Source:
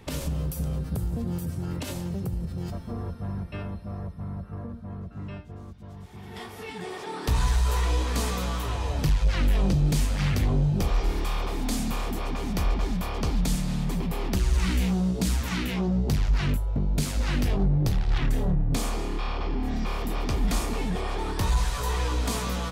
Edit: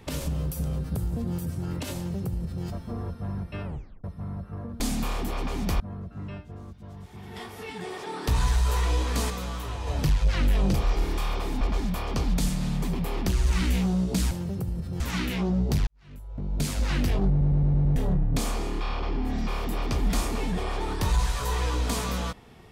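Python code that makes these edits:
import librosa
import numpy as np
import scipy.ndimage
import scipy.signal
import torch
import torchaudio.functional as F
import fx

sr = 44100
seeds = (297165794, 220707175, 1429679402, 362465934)

y = fx.edit(x, sr, fx.duplicate(start_s=1.96, length_s=0.69, to_s=15.38),
    fx.tape_stop(start_s=3.65, length_s=0.39),
    fx.clip_gain(start_s=8.3, length_s=0.57, db=-4.0),
    fx.cut(start_s=9.74, length_s=1.07),
    fx.move(start_s=11.68, length_s=1.0, to_s=4.8),
    fx.fade_in_span(start_s=16.25, length_s=0.81, curve='qua'),
    fx.stutter_over(start_s=17.68, slice_s=0.11, count=6), tone=tone)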